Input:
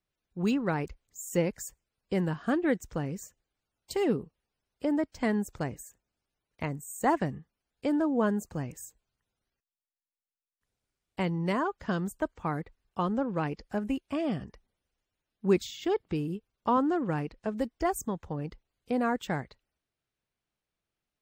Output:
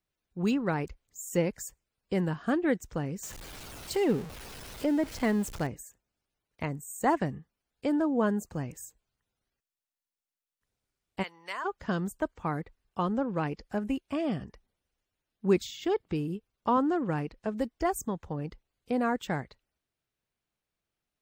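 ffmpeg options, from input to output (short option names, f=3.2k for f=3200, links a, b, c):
-filter_complex "[0:a]asettb=1/sr,asplit=3[a][b][c];[a]atrim=end=3.234[d];[b]atrim=start=3.23:end=5.67,asetpts=PTS-STARTPTS,afade=t=in:d=0.004:c=qsin,afade=t=out:st=2.436:d=0.004:c=qsin,aeval=exprs='val(0)+0.5*0.0133*sgn(val(0))':c=same[e];[c]atrim=start=5.666[f];[d][e]acrossfade=d=0.004:c1=hsin:c2=qsin[g];[g][f]acrossfade=d=0.004:c1=qsin:c2=hsin,asplit=3[h][i][j];[h]afade=t=out:st=11.22:d=0.02[k];[i]highpass=1.2k,afade=t=in:st=11.22:d=0.02,afade=t=out:st=11.64:d=0.02[l];[j]afade=t=in:st=11.64:d=0.02[m];[k][l][m]amix=inputs=3:normalize=0"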